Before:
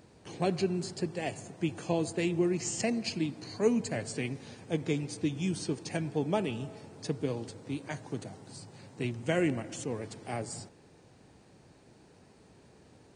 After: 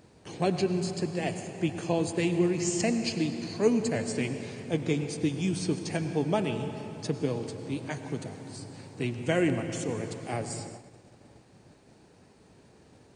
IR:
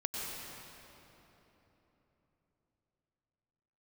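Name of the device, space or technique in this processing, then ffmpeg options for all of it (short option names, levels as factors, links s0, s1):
keyed gated reverb: -filter_complex "[0:a]asplit=3[s0][s1][s2];[1:a]atrim=start_sample=2205[s3];[s1][s3]afir=irnorm=-1:irlink=0[s4];[s2]apad=whole_len=580016[s5];[s4][s5]sidechaingate=range=0.0224:threshold=0.00158:ratio=16:detection=peak,volume=0.398[s6];[s0][s6]amix=inputs=2:normalize=0"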